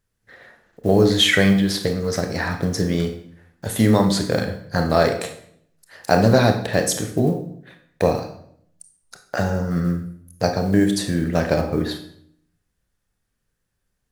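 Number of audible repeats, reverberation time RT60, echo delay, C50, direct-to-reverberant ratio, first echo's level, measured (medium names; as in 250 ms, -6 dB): no echo, 0.65 s, no echo, 8.5 dB, 5.5 dB, no echo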